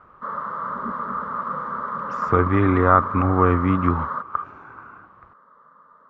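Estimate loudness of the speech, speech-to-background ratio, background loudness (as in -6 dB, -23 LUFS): -20.5 LUFS, 7.5 dB, -28.0 LUFS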